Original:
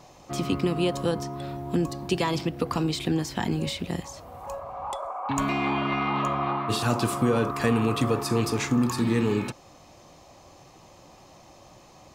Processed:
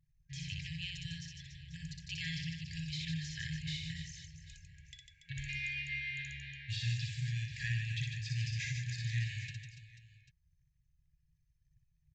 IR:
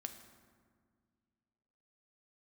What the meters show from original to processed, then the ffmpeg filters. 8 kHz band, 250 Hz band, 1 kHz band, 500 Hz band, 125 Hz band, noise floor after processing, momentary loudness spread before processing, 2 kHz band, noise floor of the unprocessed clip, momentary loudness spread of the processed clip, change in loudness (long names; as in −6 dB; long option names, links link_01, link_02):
−12.0 dB, below −20 dB, below −40 dB, below −40 dB, −7.5 dB, −75 dBFS, 11 LU, −6.5 dB, −52 dBFS, 16 LU, −12.5 dB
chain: -filter_complex "[0:a]anlmdn=0.0631,aecho=1:1:60|150|285|487.5|791.2:0.631|0.398|0.251|0.158|0.1,acrossover=split=4100[link_01][link_02];[link_02]acompressor=threshold=-39dB:ratio=4:attack=1:release=60[link_03];[link_01][link_03]amix=inputs=2:normalize=0,afftfilt=real='re*(1-between(b*sr/4096,170,1600))':imag='im*(1-between(b*sr/4096,170,1600))':win_size=4096:overlap=0.75,aresample=16000,aresample=44100,volume=-8dB"